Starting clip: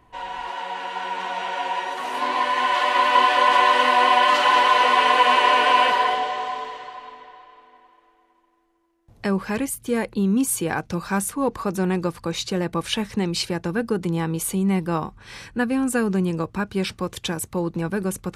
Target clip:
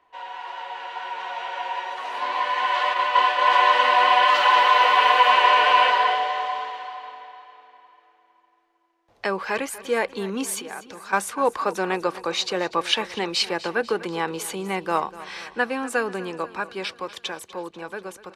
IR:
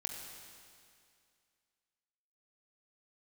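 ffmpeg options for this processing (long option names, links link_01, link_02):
-filter_complex "[0:a]asplit=3[link_01][link_02][link_03];[link_01]afade=type=out:start_time=2.93:duration=0.02[link_04];[link_02]agate=range=-33dB:threshold=-14dB:ratio=3:detection=peak,afade=type=in:start_time=2.93:duration=0.02,afade=type=out:start_time=3.45:duration=0.02[link_05];[link_03]afade=type=in:start_time=3.45:duration=0.02[link_06];[link_04][link_05][link_06]amix=inputs=3:normalize=0,asettb=1/sr,asplit=3[link_07][link_08][link_09];[link_07]atrim=end=10.594[link_10];[link_08]atrim=start=10.59:end=11.13,asetpts=PTS-STARTPTS,afade=type=in:duration=0.004:curve=qsin,afade=type=out:start_time=0.536:duration=0.004:curve=qsin,acompressor=threshold=-35dB:ratio=10[link_11];[link_09]atrim=start=11.126[link_12];[link_10][link_11]acrossfade=duration=0.004:curve1=hsin:curve2=qsin[link_13];[link_13][link_12]acrossfade=duration=0.004:curve1=qsin:curve2=hsin,acrossover=split=400 5900:gain=0.0794 1 0.224[link_14][link_15][link_16];[link_14][link_15][link_16]amix=inputs=3:normalize=0,asettb=1/sr,asplit=3[link_17][link_18][link_19];[link_17]atrim=end=4.284[link_20];[link_18]atrim=start=4.28:end=5.29,asetpts=PTS-STARTPTS,afade=type=in:duration=0.004:curve=qsin,afade=type=out:start_time=1.006:duration=0.004:curve=qsin,aeval=exprs='val(0)*gte(abs(val(0)),0.00794)':channel_layout=same[link_21];[link_19]atrim=start=5.286[link_22];[link_20][link_21]acrossfade=duration=0.004:curve1=hsin:curve2=qsin[link_23];[link_23][link_22]acrossfade=duration=0.004:curve1=qsin:curve2=hsin,dynaudnorm=framelen=840:gausssize=7:maxgain=11.5dB,aecho=1:1:245|490|735|980|1225:0.141|0.0805|0.0459|0.0262|0.0149,volume=-3.5dB"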